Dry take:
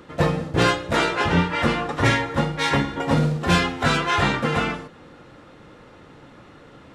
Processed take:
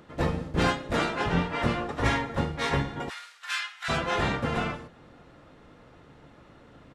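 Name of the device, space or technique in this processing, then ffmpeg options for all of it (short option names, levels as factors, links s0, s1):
octave pedal: -filter_complex "[0:a]asplit=2[s0][s1];[s1]asetrate=22050,aresample=44100,atempo=2,volume=0.794[s2];[s0][s2]amix=inputs=2:normalize=0,asplit=3[s3][s4][s5];[s3]afade=t=out:st=3.08:d=0.02[s6];[s4]highpass=f=1400:w=0.5412,highpass=f=1400:w=1.3066,afade=t=in:st=3.08:d=0.02,afade=t=out:st=3.88:d=0.02[s7];[s5]afade=t=in:st=3.88:d=0.02[s8];[s6][s7][s8]amix=inputs=3:normalize=0,volume=0.398"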